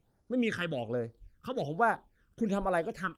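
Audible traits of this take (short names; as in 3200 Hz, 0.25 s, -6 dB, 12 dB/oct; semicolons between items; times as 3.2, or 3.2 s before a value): phasing stages 12, 1.2 Hz, lowest notch 680–3000 Hz; Opus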